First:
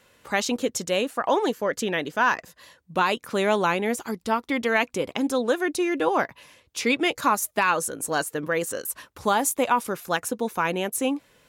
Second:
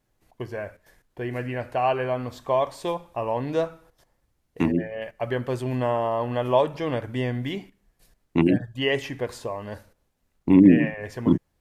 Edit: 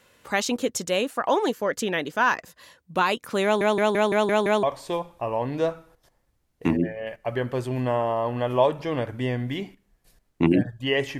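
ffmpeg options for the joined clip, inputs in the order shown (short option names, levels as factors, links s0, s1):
-filter_complex "[0:a]apad=whole_dur=11.19,atrim=end=11.19,asplit=7[s0][s1][s2][s3][s4][s5][s6];[s0]atrim=end=3.612[s7];[s1]atrim=start=3.438:end=3.612[s8];[s2]atrim=start=3.438:end=3.612[s9];[s3]atrim=start=3.438:end=3.612[s10];[s4]atrim=start=3.438:end=3.612[s11];[s5]atrim=start=3.438:end=3.612[s12];[s6]atrim=start=3.438:end=3.612[s13];[1:a]atrim=start=2.578:end=9.14[s14];[s7][s8]acrossfade=d=0.004:c1=hsin:c2=hsin[s15];[s15][s9]acrossfade=d=0.004:c1=hsin:c2=hsin[s16];[s16][s10]acrossfade=d=0.004:c1=hsin:c2=hsin[s17];[s17][s11]acrossfade=d=0.004:c1=hsin:c2=hsin[s18];[s18][s12]acrossfade=d=0.004:c1=hsin:c2=hsin[s19];[s19][s13]acrossfade=d=0.004:c1=hsin:c2=hsin[s20];[s20][s14]acrossfade=d=0.004:c1=hsin:c2=hsin"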